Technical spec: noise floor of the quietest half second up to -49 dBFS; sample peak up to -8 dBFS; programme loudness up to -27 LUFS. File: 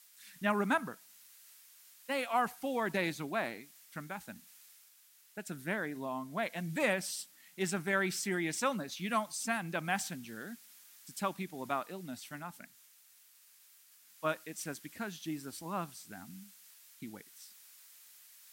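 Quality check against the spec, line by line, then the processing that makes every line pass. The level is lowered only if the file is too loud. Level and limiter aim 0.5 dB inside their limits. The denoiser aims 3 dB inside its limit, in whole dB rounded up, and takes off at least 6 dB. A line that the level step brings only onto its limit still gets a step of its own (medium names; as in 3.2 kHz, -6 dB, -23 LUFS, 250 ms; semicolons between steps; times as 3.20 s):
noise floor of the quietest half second -63 dBFS: pass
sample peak -17.0 dBFS: pass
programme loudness -36.5 LUFS: pass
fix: none needed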